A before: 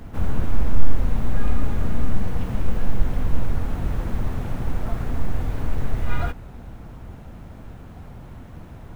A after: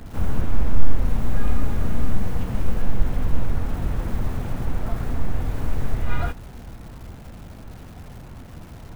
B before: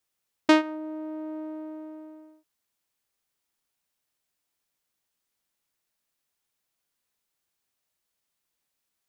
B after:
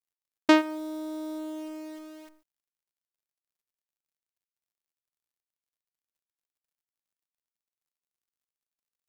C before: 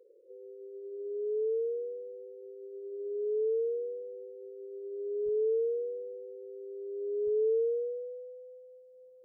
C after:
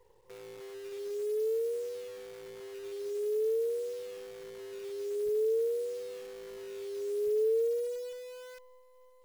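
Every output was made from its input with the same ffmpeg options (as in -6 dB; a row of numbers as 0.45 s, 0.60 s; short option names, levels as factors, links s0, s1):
-af "acrusher=bits=9:dc=4:mix=0:aa=0.000001"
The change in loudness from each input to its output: 0.0 LU, 0.0 LU, 0.0 LU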